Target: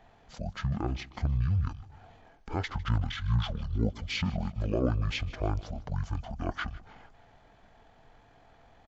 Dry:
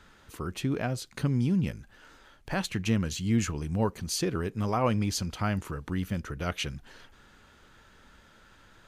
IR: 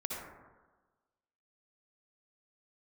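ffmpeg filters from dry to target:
-filter_complex "[0:a]asetrate=22050,aresample=44100,atempo=2,asplit=2[s0][s1];[s1]aecho=0:1:153|306|459|612:0.0944|0.0481|0.0246|0.0125[s2];[s0][s2]amix=inputs=2:normalize=0,volume=0.891"

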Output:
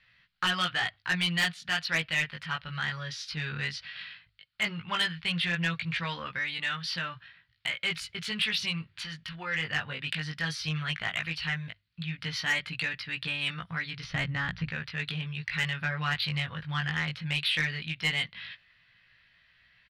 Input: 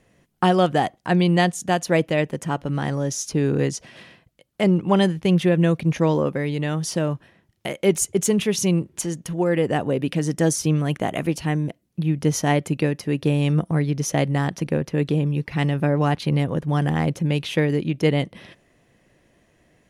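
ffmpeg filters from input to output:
-filter_complex "[0:a]asettb=1/sr,asplit=3[s0][s1][s2];[s0]atrim=end=14.044[s3];[s1]atrim=start=14.04:end=14.69,asetpts=PTS-STARTPTS,afade=t=in:d=0.004:c=qsin,afade=t=out:st=0.646:d=0.004:c=qsin,aemphasis=mode=reproduction:type=riaa[s4];[s2]atrim=start=14.686[s5];[s3][s4]acrossfade=d=0.004:c1=hsin:c2=qsin[s6];[s6][s5]acrossfade=d=0.004:c1=qsin:c2=hsin,flanger=delay=17:depth=2.5:speed=0.15,firequalizer=gain_entry='entry(100,0);entry(310,-21);entry(1400,12);entry(4400,15);entry(6500,-15)':delay=0.05:min_phase=1,asoftclip=type=tanh:threshold=0.2,bandreject=f=50:t=h:w=6,bandreject=f=100:t=h:w=6,volume=0.531"

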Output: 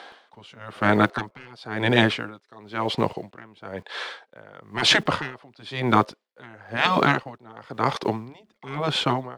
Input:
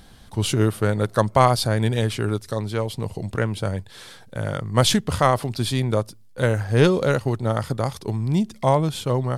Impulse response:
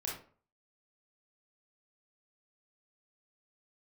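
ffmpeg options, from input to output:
-filter_complex "[0:a]highpass=210,lowpass=2700,acrossover=split=410[s0][s1];[s0]aeval=exprs='val(0)*gte(abs(val(0)),0.00355)':c=same[s2];[s1]acontrast=67[s3];[s2][s3]amix=inputs=2:normalize=0,afftfilt=real='re*lt(hypot(re,im),0.447)':imag='im*lt(hypot(re,im),0.447)':win_size=1024:overlap=0.75,aeval=exprs='val(0)*pow(10,-29*(0.5-0.5*cos(2*PI*1*n/s))/20)':c=same,volume=2.66"

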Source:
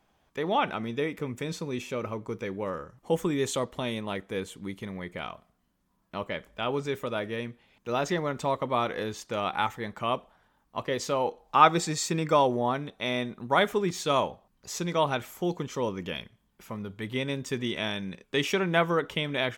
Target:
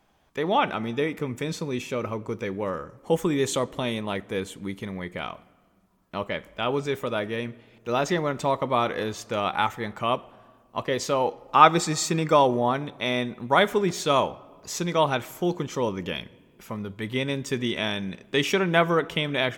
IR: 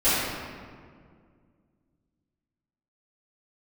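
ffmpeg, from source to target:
-filter_complex "[0:a]asplit=2[s0][s1];[1:a]atrim=start_sample=2205,asetrate=48510,aresample=44100[s2];[s1][s2]afir=irnorm=-1:irlink=0,volume=0.0126[s3];[s0][s3]amix=inputs=2:normalize=0,volume=1.5"

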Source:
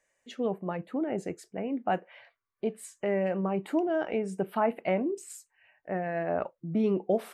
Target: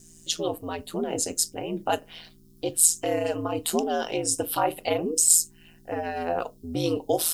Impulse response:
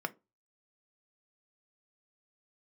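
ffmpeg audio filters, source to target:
-filter_complex "[0:a]aeval=exprs='val(0)+0.00316*(sin(2*PI*60*n/s)+sin(2*PI*2*60*n/s)/2+sin(2*PI*3*60*n/s)/3+sin(2*PI*4*60*n/s)/4+sin(2*PI*5*60*n/s)/5)':c=same,aeval=exprs='val(0)*sin(2*PI*82*n/s)':c=same,aexciter=amount=11.8:drive=8.6:freq=3300,asplit=2[s0][s1];[1:a]atrim=start_sample=2205,afade=t=out:st=0.16:d=0.01,atrim=end_sample=7497[s2];[s1][s2]afir=irnorm=-1:irlink=0,volume=0.596[s3];[s0][s3]amix=inputs=2:normalize=0"

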